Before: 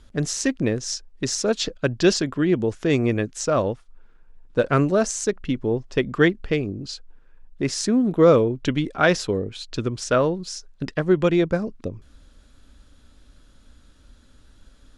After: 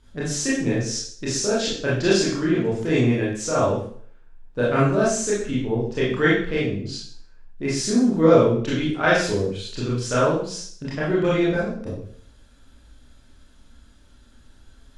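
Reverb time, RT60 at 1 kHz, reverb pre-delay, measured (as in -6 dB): 0.55 s, 0.55 s, 24 ms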